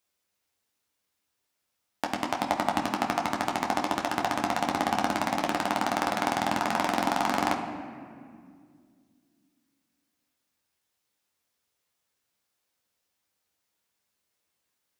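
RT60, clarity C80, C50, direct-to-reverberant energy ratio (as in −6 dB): 2.1 s, 8.5 dB, 7.0 dB, 0.0 dB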